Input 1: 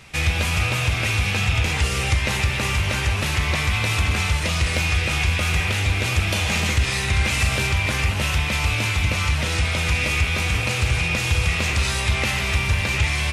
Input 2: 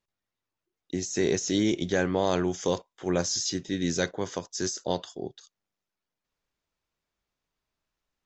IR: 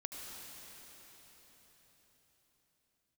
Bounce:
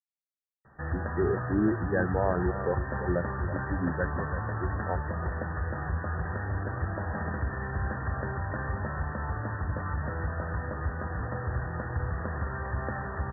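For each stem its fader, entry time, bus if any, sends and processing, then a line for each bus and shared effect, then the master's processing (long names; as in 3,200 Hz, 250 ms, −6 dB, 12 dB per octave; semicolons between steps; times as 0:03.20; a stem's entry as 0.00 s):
−9.5 dB, 0.65 s, send −4 dB, no echo send, no processing
+1.5 dB, 0.00 s, no send, echo send −11.5 dB, spectral dynamics exaggerated over time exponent 2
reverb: on, RT60 4.7 s, pre-delay 69 ms
echo: single-tap delay 332 ms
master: linear-phase brick-wall low-pass 1,900 Hz; low-shelf EQ 85 Hz −8 dB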